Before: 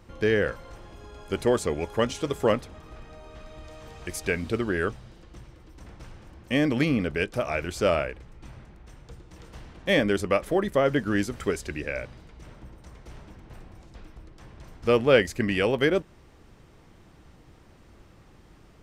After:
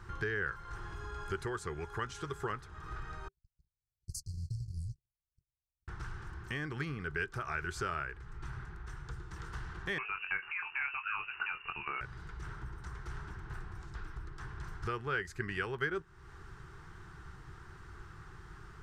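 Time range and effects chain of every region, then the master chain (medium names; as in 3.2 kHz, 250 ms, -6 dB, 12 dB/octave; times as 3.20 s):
3.28–5.88 s: brick-wall FIR band-stop 160–4100 Hz + gate -39 dBFS, range -51 dB
9.98–12.01 s: compression 1.5:1, threshold -28 dBFS + doubling 22 ms -7 dB + frequency inversion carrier 2.8 kHz
whole clip: compression 2.5:1, threshold -41 dBFS; FFT filter 150 Hz 0 dB, 260 Hz -16 dB, 390 Hz 0 dB, 560 Hz -20 dB, 800 Hz -4 dB, 1.5 kHz +9 dB, 2.3 kHz -6 dB, 4.7 kHz -4 dB, 8.2 kHz -4 dB, 13 kHz -10 dB; trim +3.5 dB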